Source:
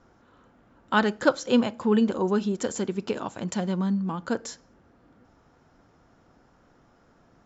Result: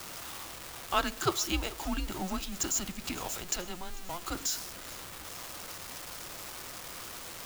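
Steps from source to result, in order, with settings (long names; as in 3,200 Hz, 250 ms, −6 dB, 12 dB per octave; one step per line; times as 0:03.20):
converter with a step at zero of −33 dBFS
spectral tilt +3.5 dB per octave
frequency shifter −180 Hz
feedback echo with a swinging delay time 444 ms, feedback 76%, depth 77 cents, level −21.5 dB
level −7 dB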